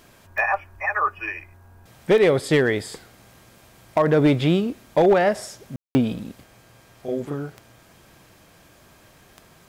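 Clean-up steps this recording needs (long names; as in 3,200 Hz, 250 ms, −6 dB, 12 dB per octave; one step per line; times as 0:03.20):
clipped peaks rebuilt −10.5 dBFS
click removal
ambience match 0:05.76–0:05.95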